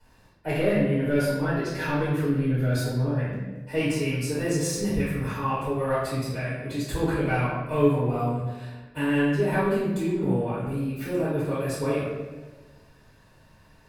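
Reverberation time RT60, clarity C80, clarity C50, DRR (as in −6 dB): 1.3 s, 2.5 dB, −0.5 dB, −12.5 dB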